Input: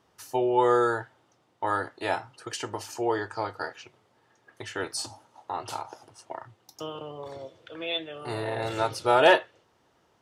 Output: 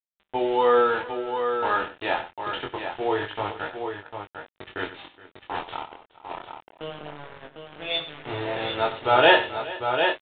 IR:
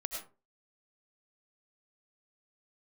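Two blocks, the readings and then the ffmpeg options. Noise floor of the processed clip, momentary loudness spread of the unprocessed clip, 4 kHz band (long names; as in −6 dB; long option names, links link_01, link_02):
−76 dBFS, 20 LU, +5.5 dB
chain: -af "aeval=exprs='val(0)*gte(abs(val(0)),0.02)':channel_layout=same,flanger=delay=19:depth=5.3:speed=0.26,aecho=1:1:45|95|420|751:0.119|0.211|0.119|0.473,aresample=8000,aresample=44100,adynamicequalizer=threshold=0.00891:dfrequency=2100:dqfactor=0.7:tfrequency=2100:tqfactor=0.7:attack=5:release=100:ratio=0.375:range=3:mode=boostabove:tftype=highshelf,volume=4.5dB"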